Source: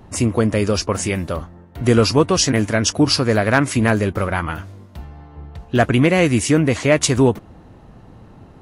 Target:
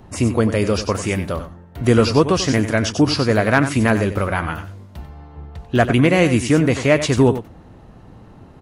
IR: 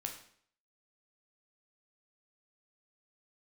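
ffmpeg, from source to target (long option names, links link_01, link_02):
-filter_complex "[0:a]asplit=2[link_01][link_02];[link_02]aecho=0:1:93:0.266[link_03];[link_01][link_03]amix=inputs=2:normalize=0,acrossover=split=4300[link_04][link_05];[link_05]acompressor=threshold=-29dB:ratio=4:attack=1:release=60[link_06];[link_04][link_06]amix=inputs=2:normalize=0"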